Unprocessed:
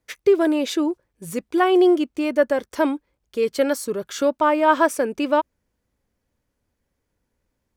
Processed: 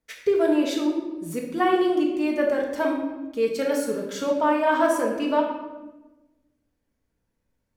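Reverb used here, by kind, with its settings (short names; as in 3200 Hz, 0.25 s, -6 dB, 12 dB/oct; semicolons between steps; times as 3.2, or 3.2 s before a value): shoebox room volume 590 m³, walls mixed, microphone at 1.6 m; gain -6.5 dB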